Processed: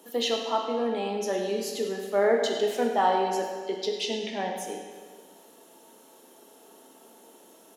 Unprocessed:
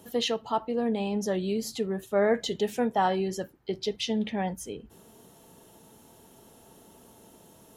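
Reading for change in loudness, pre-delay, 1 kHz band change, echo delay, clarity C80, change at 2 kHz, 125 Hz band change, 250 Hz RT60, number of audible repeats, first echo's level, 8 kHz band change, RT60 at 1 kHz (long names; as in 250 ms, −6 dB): +1.5 dB, 15 ms, +3.5 dB, 99 ms, 4.5 dB, +2.0 dB, can't be measured, 1.7 s, 1, −12.0 dB, +1.5 dB, 1.7 s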